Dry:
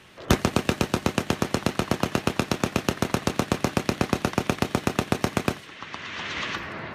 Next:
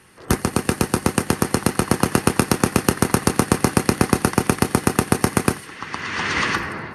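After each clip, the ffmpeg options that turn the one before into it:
ffmpeg -i in.wav -af "superequalizer=8b=0.501:12b=0.631:13b=0.447:16b=3.55,dynaudnorm=framelen=180:gausssize=7:maxgain=13dB" out.wav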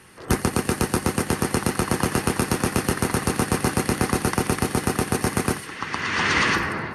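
ffmpeg -i in.wav -af "alimiter=limit=-12.5dB:level=0:latency=1:release=14,volume=2dB" out.wav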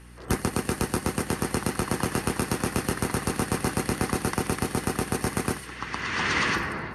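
ffmpeg -i in.wav -af "aeval=exprs='val(0)+0.00794*(sin(2*PI*60*n/s)+sin(2*PI*2*60*n/s)/2+sin(2*PI*3*60*n/s)/3+sin(2*PI*4*60*n/s)/4+sin(2*PI*5*60*n/s)/5)':channel_layout=same,volume=-4.5dB" out.wav

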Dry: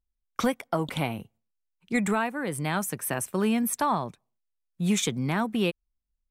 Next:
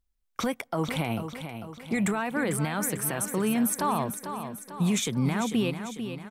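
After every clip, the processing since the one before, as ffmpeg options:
ffmpeg -i in.wav -filter_complex "[0:a]alimiter=limit=-23dB:level=0:latency=1:release=66,asplit=2[link_01][link_02];[link_02]aecho=0:1:446|892|1338|1784|2230|2676:0.355|0.185|0.0959|0.0499|0.0259|0.0135[link_03];[link_01][link_03]amix=inputs=2:normalize=0,volume=4.5dB" out.wav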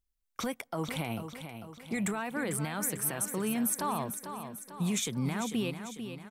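ffmpeg -i in.wav -af "highshelf=frequency=4400:gain=5,volume=-6dB" out.wav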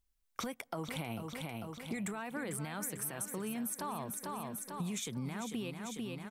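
ffmpeg -i in.wav -af "acompressor=threshold=-40dB:ratio=5,volume=3dB" out.wav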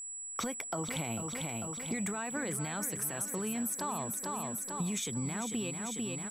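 ffmpeg -i in.wav -af "aeval=exprs='val(0)+0.00708*sin(2*PI*7800*n/s)':channel_layout=same,volume=3dB" out.wav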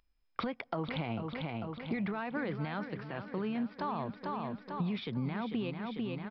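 ffmpeg -i in.wav -af "adynamicsmooth=sensitivity=3:basefreq=3200,aresample=11025,aresample=44100,volume=1.5dB" out.wav

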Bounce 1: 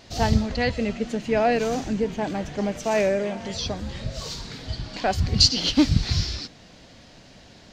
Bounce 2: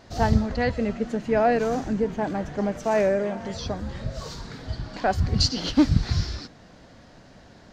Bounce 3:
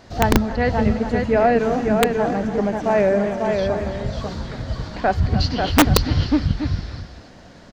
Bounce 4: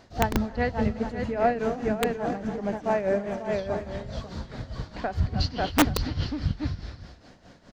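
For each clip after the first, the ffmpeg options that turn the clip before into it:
ffmpeg -i in.wav -af "highshelf=frequency=2000:width_type=q:width=1.5:gain=-6" out.wav
ffmpeg -i in.wav -filter_complex "[0:a]acrossover=split=4000[link_01][link_02];[link_02]acompressor=threshold=-55dB:ratio=4:attack=1:release=60[link_03];[link_01][link_03]amix=inputs=2:normalize=0,aecho=1:1:282|294|543|825:0.112|0.178|0.596|0.224,aeval=exprs='(mod(2.99*val(0)+1,2)-1)/2.99':channel_layout=same,volume=4dB" out.wav
ffmpeg -i in.wav -af "tremolo=f=4.8:d=0.71,volume=-5dB" out.wav

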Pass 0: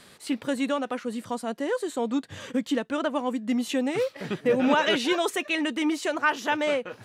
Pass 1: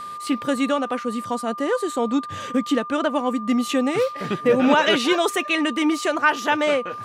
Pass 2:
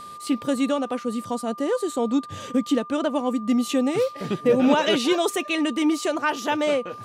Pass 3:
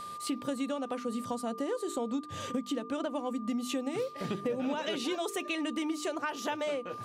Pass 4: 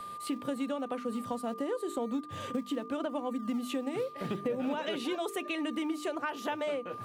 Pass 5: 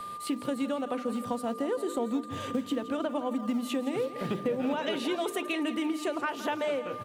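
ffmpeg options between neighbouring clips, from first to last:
ffmpeg -i in.wav -af "aeval=exprs='val(0)+0.0158*sin(2*PI*1200*n/s)':channel_layout=same,volume=5dB" out.wav
ffmpeg -i in.wav -af "equalizer=frequency=1600:width=0.83:gain=-7.5" out.wav
ffmpeg -i in.wav -af "bandreject=frequency=50:width_type=h:width=6,bandreject=frequency=100:width_type=h:width=6,bandreject=frequency=150:width_type=h:width=6,bandreject=frequency=200:width_type=h:width=6,bandreject=frequency=250:width_type=h:width=6,bandreject=frequency=300:width_type=h:width=6,bandreject=frequency=350:width_type=h:width=6,bandreject=frequency=400:width_type=h:width=6,bandreject=frequency=450:width_type=h:width=6,acompressor=threshold=-28dB:ratio=6,volume=-2.5dB" out.wav
ffmpeg -i in.wav -filter_complex "[0:a]equalizer=frequency=6000:width_type=o:width=1.1:gain=-8.5,acrossover=split=150|1100|4000[link_01][link_02][link_03][link_04];[link_01]acrusher=samples=41:mix=1:aa=0.000001:lfo=1:lforange=41:lforate=0.84[link_05];[link_05][link_02][link_03][link_04]amix=inputs=4:normalize=0" out.wav
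ffmpeg -i in.wav -af "aecho=1:1:167|334|501|668|835|1002:0.211|0.116|0.0639|0.0352|0.0193|0.0106,volume=3dB" out.wav

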